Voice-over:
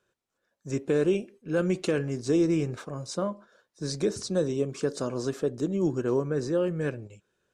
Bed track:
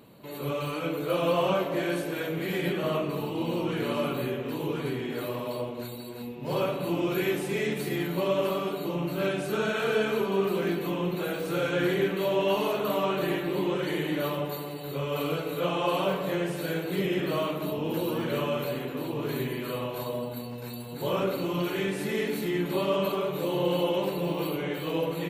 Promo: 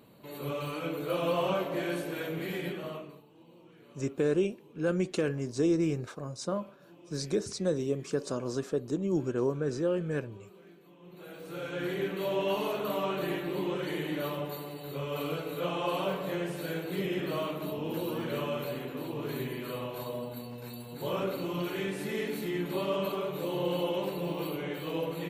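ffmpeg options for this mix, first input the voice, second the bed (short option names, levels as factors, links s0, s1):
-filter_complex "[0:a]adelay=3300,volume=0.708[s0];[1:a]volume=8.41,afade=t=out:st=2.4:d=0.83:silence=0.0707946,afade=t=in:st=11:d=1.32:silence=0.0749894[s1];[s0][s1]amix=inputs=2:normalize=0"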